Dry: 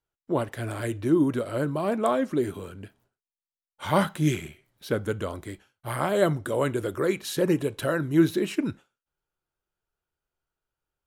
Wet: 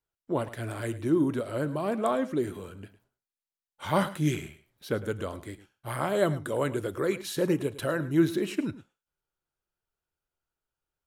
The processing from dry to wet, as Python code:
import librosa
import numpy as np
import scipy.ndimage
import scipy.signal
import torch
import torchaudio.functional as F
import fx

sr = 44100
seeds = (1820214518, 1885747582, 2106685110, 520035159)

p1 = fx.vibrato(x, sr, rate_hz=4.4, depth_cents=17.0)
p2 = p1 + fx.echo_single(p1, sr, ms=106, db=-16.0, dry=0)
y = p2 * librosa.db_to_amplitude(-3.0)